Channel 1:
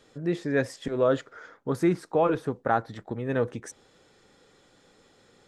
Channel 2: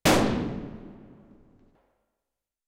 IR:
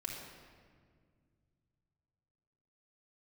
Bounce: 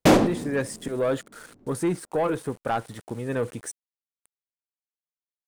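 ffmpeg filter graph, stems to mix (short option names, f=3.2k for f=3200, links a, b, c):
-filter_complex "[0:a]aeval=exprs='val(0)*gte(abs(val(0)),0.00473)':c=same,equalizer=f=9.1k:t=o:w=0.51:g=14.5,asoftclip=type=tanh:threshold=-17.5dB,volume=0.5dB,asplit=2[a][b];[1:a]equalizer=f=310:w=0.35:g=8.5,volume=-2dB[c];[b]apad=whole_len=118037[d];[c][d]sidechaincompress=threshold=-34dB:ratio=8:attack=6.7:release=598[e];[a][e]amix=inputs=2:normalize=0"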